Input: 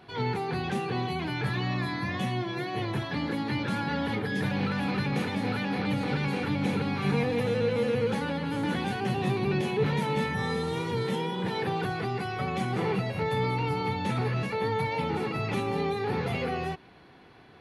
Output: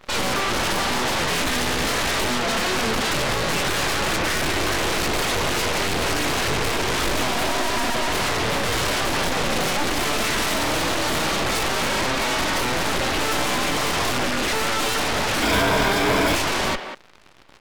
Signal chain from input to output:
full-wave rectification
0:15.42–0:16.35: EQ curve with evenly spaced ripples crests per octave 1.7, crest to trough 10 dB
in parallel at −4.5 dB: fuzz pedal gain 39 dB, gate −47 dBFS
on the sum: far-end echo of a speakerphone 190 ms, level −8 dB

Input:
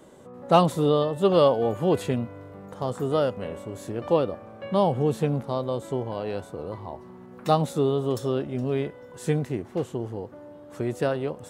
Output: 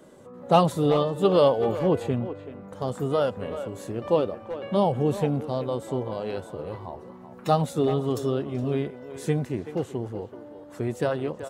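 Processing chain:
spectral magnitudes quantised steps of 15 dB
0:01.79–0:02.73: high-shelf EQ 3,000 Hz −9.5 dB
far-end echo of a speakerphone 380 ms, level −11 dB

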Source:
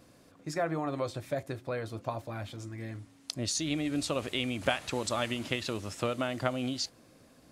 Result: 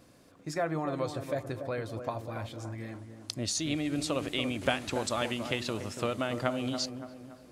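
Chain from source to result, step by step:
delay with a low-pass on its return 284 ms, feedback 45%, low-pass 1,300 Hz, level −8 dB

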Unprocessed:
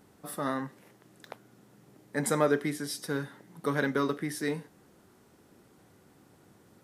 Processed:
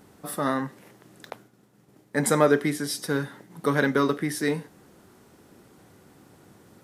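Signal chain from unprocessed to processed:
0:01.30–0:03.52: downward expander −51 dBFS
level +6 dB

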